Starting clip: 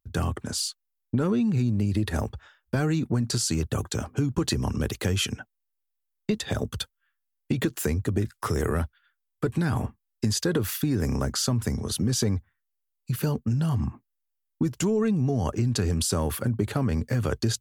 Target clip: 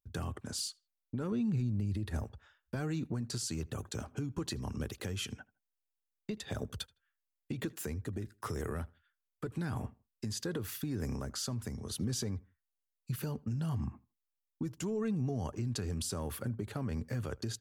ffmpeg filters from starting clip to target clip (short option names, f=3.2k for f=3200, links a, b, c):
-filter_complex "[0:a]asettb=1/sr,asplit=3[a][b][c];[a]atrim=end=1.324[d];[b]atrim=start=1.32:end=2.24,asetpts=PTS-STARTPTS,afade=t=in:d=0.004:c=qsin,afade=t=out:st=0.916:d=0.004:c=qsin,lowshelf=f=160:g=8[e];[c]atrim=start=2.236[f];[d][e]acrossfade=d=0.004:c1=hsin:c2=qsin[g];[g][f]acrossfade=d=0.004:c1=qsin:c2=hsin,alimiter=limit=-17.5dB:level=0:latency=1:release=438,asplit=2[h][i];[i]adelay=80,lowpass=f=3.3k:p=1,volume=-24dB,asplit=2[j][k];[k]adelay=80,lowpass=f=3.3k:p=1,volume=0.29[l];[j][l]amix=inputs=2:normalize=0[m];[h][m]amix=inputs=2:normalize=0,volume=-8.5dB"